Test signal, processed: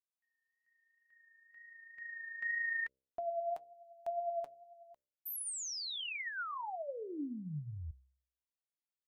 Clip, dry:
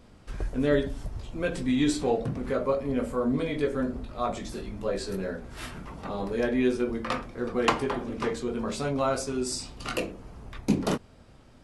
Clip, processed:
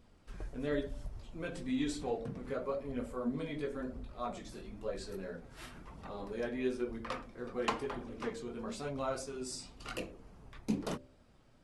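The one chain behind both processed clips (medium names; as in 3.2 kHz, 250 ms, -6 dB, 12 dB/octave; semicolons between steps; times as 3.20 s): flange 1 Hz, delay 0.2 ms, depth 7.4 ms, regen +55%; de-hum 65.43 Hz, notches 9; wow and flutter 16 cents; trim -6 dB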